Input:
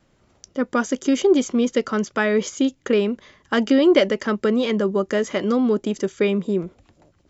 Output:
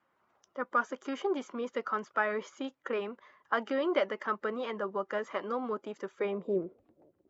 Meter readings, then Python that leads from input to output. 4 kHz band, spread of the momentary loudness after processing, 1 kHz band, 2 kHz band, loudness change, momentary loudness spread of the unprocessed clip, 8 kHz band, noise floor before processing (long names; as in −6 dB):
−16.0 dB, 10 LU, −4.0 dB, −8.5 dB, −13.5 dB, 9 LU, can't be measured, −62 dBFS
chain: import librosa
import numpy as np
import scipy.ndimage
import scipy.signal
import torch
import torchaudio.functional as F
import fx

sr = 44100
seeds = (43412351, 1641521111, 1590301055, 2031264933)

y = fx.spec_quant(x, sr, step_db=15)
y = fx.filter_sweep_bandpass(y, sr, from_hz=1100.0, to_hz=410.0, start_s=6.12, end_s=6.73, q=1.8)
y = y * librosa.db_to_amplitude(-2.0)